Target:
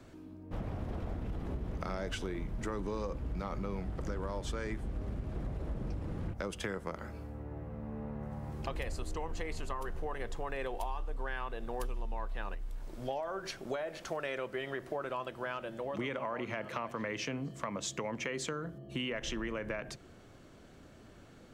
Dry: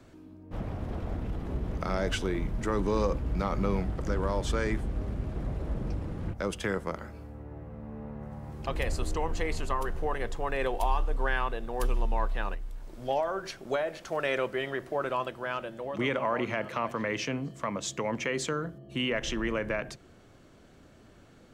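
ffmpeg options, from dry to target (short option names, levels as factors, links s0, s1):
-af "acompressor=threshold=0.02:ratio=5"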